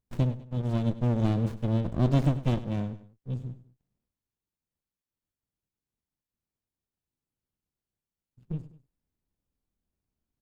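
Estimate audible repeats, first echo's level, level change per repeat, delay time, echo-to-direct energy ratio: 2, -15.5 dB, -7.0 dB, 100 ms, -14.5 dB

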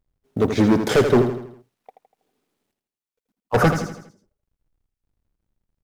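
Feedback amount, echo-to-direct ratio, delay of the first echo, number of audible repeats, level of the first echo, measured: 46%, -7.0 dB, 81 ms, 5, -8.0 dB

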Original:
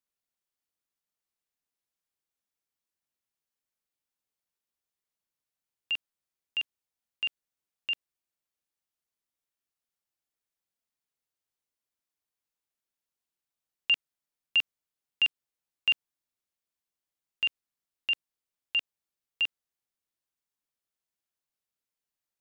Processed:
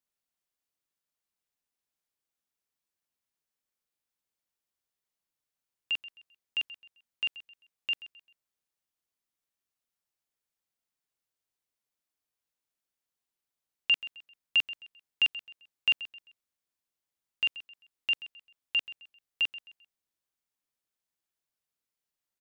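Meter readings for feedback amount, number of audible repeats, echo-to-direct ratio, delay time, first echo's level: 33%, 2, -15.5 dB, 131 ms, -16.0 dB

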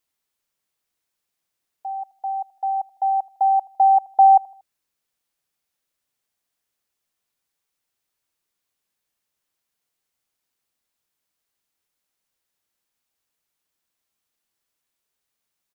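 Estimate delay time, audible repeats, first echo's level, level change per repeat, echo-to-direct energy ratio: 78 ms, 2, -23.5 dB, -7.5 dB, -22.5 dB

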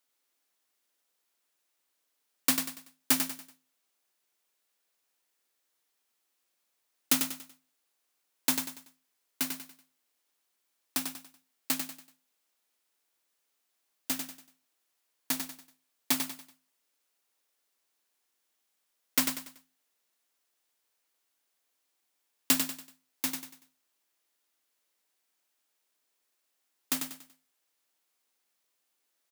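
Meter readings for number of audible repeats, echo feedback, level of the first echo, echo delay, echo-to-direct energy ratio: 4, 36%, -6.5 dB, 95 ms, -6.0 dB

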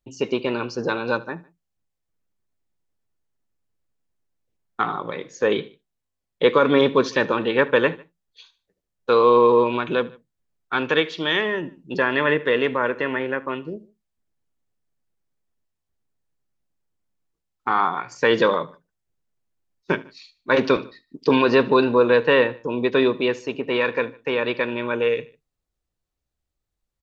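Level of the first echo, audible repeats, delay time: -21.0 dB, 2, 75 ms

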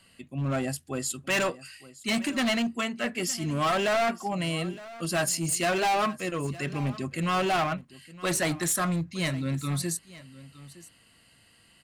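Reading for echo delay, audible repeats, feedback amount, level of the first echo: 914 ms, 1, no regular repeats, -18.5 dB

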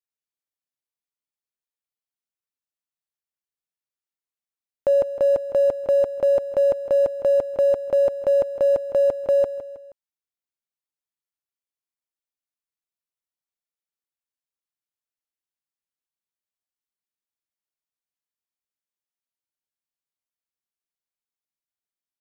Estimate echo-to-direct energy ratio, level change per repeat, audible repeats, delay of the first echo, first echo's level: -12.0 dB, -6.5 dB, 3, 159 ms, -13.0 dB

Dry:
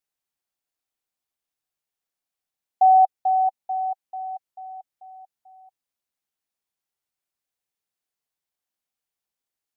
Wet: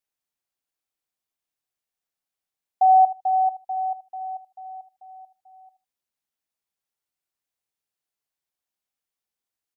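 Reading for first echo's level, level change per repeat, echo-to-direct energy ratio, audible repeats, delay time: -14.0 dB, -16.5 dB, -14.0 dB, 2, 77 ms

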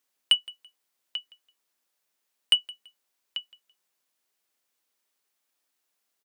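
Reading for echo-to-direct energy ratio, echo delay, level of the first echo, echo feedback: -21.0 dB, 167 ms, -21.5 dB, 25%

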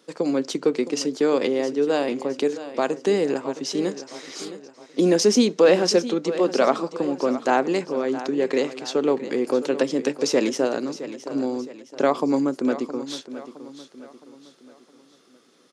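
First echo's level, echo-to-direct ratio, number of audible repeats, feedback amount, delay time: -13.5 dB, -12.5 dB, 3, 43%, 665 ms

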